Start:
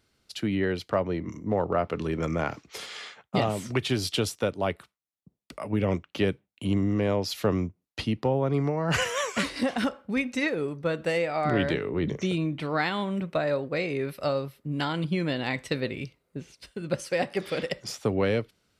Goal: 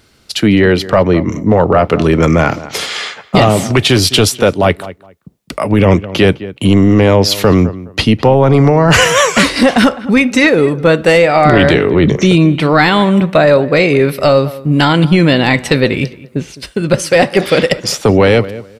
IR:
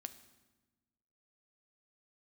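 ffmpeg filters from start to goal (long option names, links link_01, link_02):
-filter_complex "[0:a]asplit=2[link_01][link_02];[link_02]adelay=208,lowpass=frequency=2300:poles=1,volume=-18.5dB,asplit=2[link_03][link_04];[link_04]adelay=208,lowpass=frequency=2300:poles=1,volume=0.2[link_05];[link_01][link_03][link_05]amix=inputs=3:normalize=0,apsyclip=21.5dB,volume=-2dB"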